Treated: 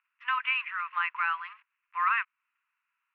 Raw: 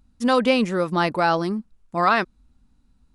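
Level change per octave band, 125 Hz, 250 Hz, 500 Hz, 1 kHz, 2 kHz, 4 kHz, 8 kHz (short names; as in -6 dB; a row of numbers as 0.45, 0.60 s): under -40 dB, under -40 dB, under -40 dB, -8.0 dB, -3.0 dB, -10.5 dB, n/a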